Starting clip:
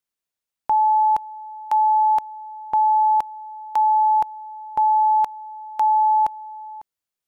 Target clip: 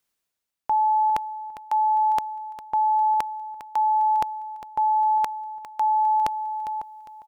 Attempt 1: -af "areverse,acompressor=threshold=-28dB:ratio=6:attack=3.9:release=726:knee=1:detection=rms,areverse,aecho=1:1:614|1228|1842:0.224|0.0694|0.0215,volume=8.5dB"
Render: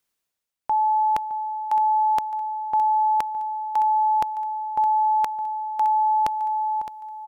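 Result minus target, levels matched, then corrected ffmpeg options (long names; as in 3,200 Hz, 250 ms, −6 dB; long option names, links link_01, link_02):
echo 210 ms late
-af "areverse,acompressor=threshold=-28dB:ratio=6:attack=3.9:release=726:knee=1:detection=rms,areverse,aecho=1:1:404|808|1212:0.224|0.0694|0.0215,volume=8.5dB"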